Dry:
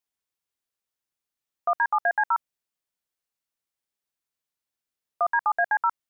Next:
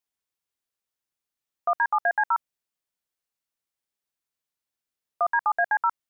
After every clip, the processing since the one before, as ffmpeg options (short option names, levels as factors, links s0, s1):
-af anull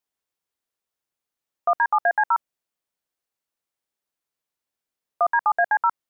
-af "equalizer=f=550:t=o:w=2.8:g=4.5"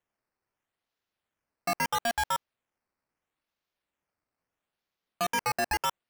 -af "acrusher=samples=9:mix=1:aa=0.000001:lfo=1:lforange=9:lforate=0.76,asoftclip=type=hard:threshold=0.0668,volume=0.841"